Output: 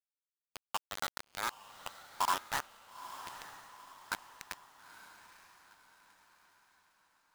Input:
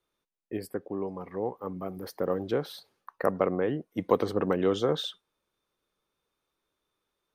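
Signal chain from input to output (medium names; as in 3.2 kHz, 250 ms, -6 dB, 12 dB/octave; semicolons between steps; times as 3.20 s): full-wave rectifier; high-pass 160 Hz 12 dB/octave; bass shelf 290 Hz -6.5 dB; LFO low-pass saw up 0.66 Hz 570–2100 Hz; peaking EQ 9.4 kHz -12 dB 0.66 oct; band-pass sweep 1.4 kHz -> 4.2 kHz, 2.36–3.50 s; bit crusher 6-bit; on a send: echo that smears into a reverb 916 ms, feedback 45%, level -12.5 dB; on the sum: trim +4 dB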